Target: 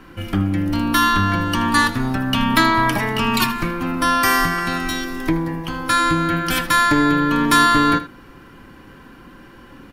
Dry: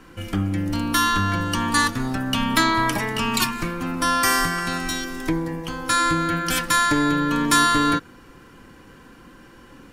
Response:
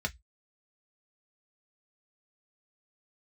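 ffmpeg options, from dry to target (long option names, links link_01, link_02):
-af "equalizer=frequency=7400:width=1.1:gain=-8.5,bandreject=frequency=480:width=12,aecho=1:1:78:0.178,volume=4dB"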